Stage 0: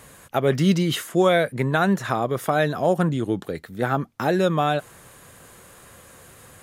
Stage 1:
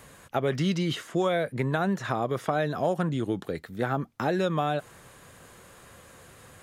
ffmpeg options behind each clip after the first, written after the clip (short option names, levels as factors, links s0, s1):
-filter_complex "[0:a]acrossover=split=930|7200[s0][s1][s2];[s0]acompressor=threshold=0.0891:ratio=4[s3];[s1]acompressor=threshold=0.0316:ratio=4[s4];[s2]acompressor=threshold=0.00112:ratio=4[s5];[s3][s4][s5]amix=inputs=3:normalize=0,volume=0.75"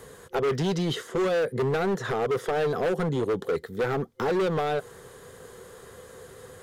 -af "superequalizer=7b=3.55:12b=0.501,volume=15,asoftclip=hard,volume=0.0668,volume=1.19"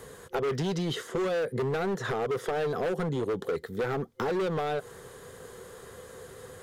-af "acompressor=threshold=0.0447:ratio=6"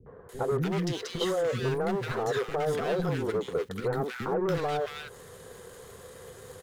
-filter_complex "[0:a]asplit=2[s0][s1];[s1]aeval=exprs='val(0)*gte(abs(val(0)),0.0106)':c=same,volume=0.282[s2];[s0][s2]amix=inputs=2:normalize=0,acrossover=split=300|1400[s3][s4][s5];[s4]adelay=60[s6];[s5]adelay=290[s7];[s3][s6][s7]amix=inputs=3:normalize=0"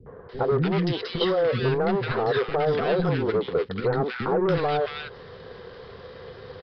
-af "aresample=11025,aresample=44100,volume=1.88"